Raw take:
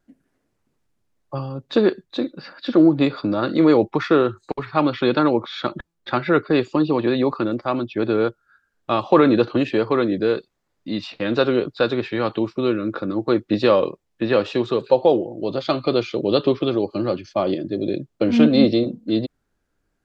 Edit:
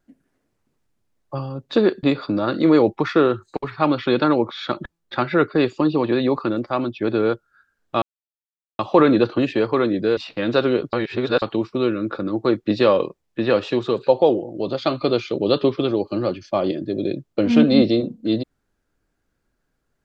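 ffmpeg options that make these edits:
-filter_complex "[0:a]asplit=6[a][b][c][d][e][f];[a]atrim=end=2.032[g];[b]atrim=start=2.978:end=8.97,asetpts=PTS-STARTPTS,afade=t=out:st=5.988:d=0.004:c=hsin,apad=pad_dur=0.77[h];[c]atrim=start=8.97:end=10.352,asetpts=PTS-STARTPTS,afade=t=in:d=0.004:c=hsin[i];[d]atrim=start=10.998:end=11.762[j];[e]atrim=start=11.758:end=12.252,asetpts=PTS-STARTPTS,areverse[k];[f]atrim=start=12.248[l];[h][i]concat=n=2:v=0:a=1[m];[g][m]acrossfade=d=0.004:c1=hsin:c2=hsin[n];[n][j]acrossfade=d=0.004:c1=hsin:c2=hsin[o];[o][k]acrossfade=d=0.004:c1=hsin:c2=hsin[p];[p][l]acrossfade=d=0.004:c1=hsin:c2=hsin"

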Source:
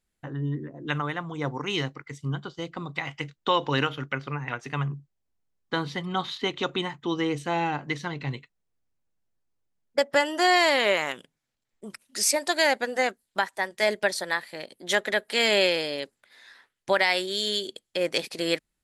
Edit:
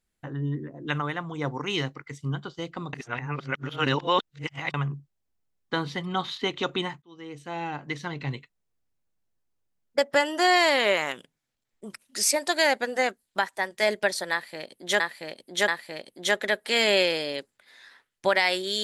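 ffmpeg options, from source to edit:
-filter_complex "[0:a]asplit=6[a][b][c][d][e][f];[a]atrim=end=2.932[g];[b]atrim=start=2.928:end=4.742,asetpts=PTS-STARTPTS,areverse[h];[c]atrim=start=4.738:end=7.02,asetpts=PTS-STARTPTS,afade=t=out:st=2.278:d=0.004:c=hsin[i];[d]atrim=start=7.02:end=15.002,asetpts=PTS-STARTPTS,afade=t=in:d=1.21[j];[e]atrim=start=14.318:end=15.002[k];[f]atrim=start=14.318[l];[g][h]acrossfade=d=0.004:c1=hsin:c2=hsin[m];[i][j]concat=n=2:v=0:a=1[n];[m][n]acrossfade=d=0.004:c1=hsin:c2=hsin[o];[o][k]acrossfade=d=0.004:c1=hsin:c2=hsin[p];[p][l]acrossfade=d=0.004:c1=hsin:c2=hsin"

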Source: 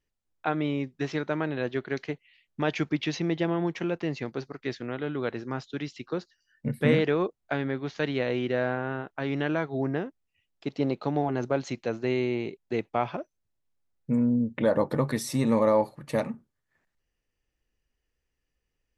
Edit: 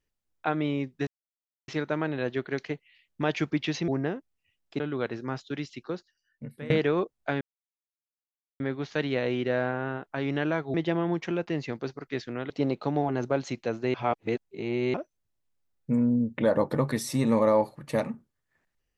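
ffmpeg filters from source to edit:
-filter_complex "[0:a]asplit=10[a][b][c][d][e][f][g][h][i][j];[a]atrim=end=1.07,asetpts=PTS-STARTPTS,afade=t=out:st=1.066:d=0.004:c=hsin,apad=pad_dur=0.61[k];[b]atrim=start=1.07:end=3.272,asetpts=PTS-STARTPTS,afade=t=in:d=0.004:c=hsin[l];[c]atrim=start=9.778:end=10.702[m];[d]atrim=start=5.028:end=6.93,asetpts=PTS-STARTPTS,afade=t=out:st=0.822:d=1.08:silence=0.105925[n];[e]atrim=start=6.93:end=7.64,asetpts=PTS-STARTPTS,afade=t=in:d=0.004:c=hsin:silence=0.105925,afade=t=out:st=0.706:d=0.004:c=hsin,apad=pad_dur=1.19[o];[f]atrim=start=7.64:end=9.782,asetpts=PTS-STARTPTS,afade=t=in:d=0.004:c=hsin[p];[g]atrim=start=3.268:end=5.032[q];[h]atrim=start=10.698:end=12.142[r];[i]atrim=start=12.138:end=13.142,asetpts=PTS-STARTPTS,areverse[s];[j]atrim=start=13.138[t];[k][l]concat=n=2:v=0:a=1[u];[u][m]acrossfade=d=0.004:c1=hsin:c2=hsin[v];[n][o][p]concat=n=3:v=0:a=1[w];[v][w]acrossfade=d=0.004:c1=hsin:c2=hsin[x];[x][q]acrossfade=d=0.004:c1=hsin:c2=hsin[y];[y][r]acrossfade=d=0.004:c1=hsin:c2=hsin[z];[z][s]acrossfade=d=0.004:c1=hsin:c2=hsin[aa];[aa][t]acrossfade=d=0.004:c1=hsin:c2=hsin"

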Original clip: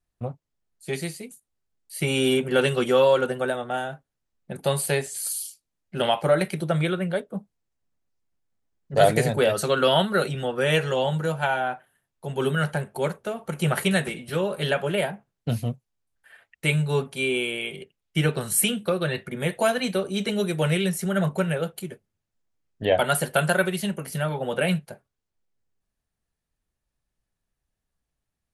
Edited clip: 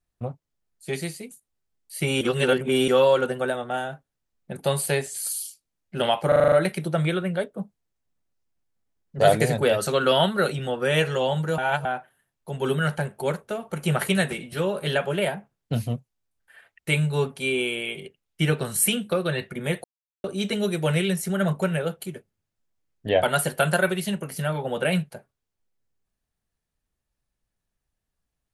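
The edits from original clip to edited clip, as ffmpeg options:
-filter_complex "[0:a]asplit=13[a][b][c][d][e][f][g][h][i][j][k][l][m];[a]atrim=end=2.212[n];[b]atrim=start=2.208:end=2.882,asetpts=PTS-STARTPTS,areverse[o];[c]atrim=start=2.878:end=6.322[p];[d]atrim=start=6.278:end=6.322[q];[e]atrim=start=6.278:end=6.322[r];[f]atrim=start=6.278:end=6.322[s];[g]atrim=start=6.278:end=6.322[t];[h]atrim=start=6.278:end=6.322[u];[i]atrim=start=6.278:end=11.342[v];[j]atrim=start=11.338:end=11.612,asetpts=PTS-STARTPTS,areverse[w];[k]atrim=start=11.608:end=19.6,asetpts=PTS-STARTPTS,afade=t=out:st=7.988:d=0.004:c=hsin[x];[l]atrim=start=19.6:end=20,asetpts=PTS-STARTPTS,volume=0[y];[m]atrim=start=20,asetpts=PTS-STARTPTS,afade=t=in:d=0.004:c=hsin[z];[n][o]acrossfade=d=0.004:c1=hsin:c2=hsin[aa];[aa][p]acrossfade=d=0.004:c1=hsin:c2=hsin[ab];[ab][q]acrossfade=d=0.004:c1=hsin:c2=hsin[ac];[ac][r]acrossfade=d=0.004:c1=hsin:c2=hsin[ad];[ad][s]acrossfade=d=0.004:c1=hsin:c2=hsin[ae];[ae][t]acrossfade=d=0.004:c1=hsin:c2=hsin[af];[af][u]acrossfade=d=0.004:c1=hsin:c2=hsin[ag];[ag][v]acrossfade=d=0.004:c1=hsin:c2=hsin[ah];[ah][w]acrossfade=d=0.004:c1=hsin:c2=hsin[ai];[x][y][z]concat=n=3:v=0:a=1[aj];[ai][aj]acrossfade=d=0.004:c1=hsin:c2=hsin"

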